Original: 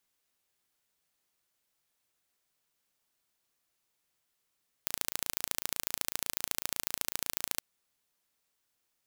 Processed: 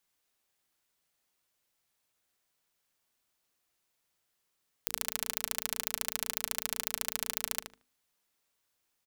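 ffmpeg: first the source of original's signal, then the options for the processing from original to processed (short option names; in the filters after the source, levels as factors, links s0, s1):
-f lavfi -i "aevalsrc='0.708*eq(mod(n,1575),0)*(0.5+0.5*eq(mod(n,3150),0))':d=2.73:s=44100"
-filter_complex "[0:a]bandreject=f=50:t=h:w=6,bandreject=f=100:t=h:w=6,bandreject=f=150:t=h:w=6,bandreject=f=200:t=h:w=6,bandreject=f=250:t=h:w=6,bandreject=f=300:t=h:w=6,bandreject=f=350:t=h:w=6,bandreject=f=400:t=h:w=6,bandreject=f=450:t=h:w=6,asplit=2[s0][s1];[s1]adelay=76,lowpass=f=3400:p=1,volume=0.596,asplit=2[s2][s3];[s3]adelay=76,lowpass=f=3400:p=1,volume=0.22,asplit=2[s4][s5];[s5]adelay=76,lowpass=f=3400:p=1,volume=0.22[s6];[s2][s4][s6]amix=inputs=3:normalize=0[s7];[s0][s7]amix=inputs=2:normalize=0"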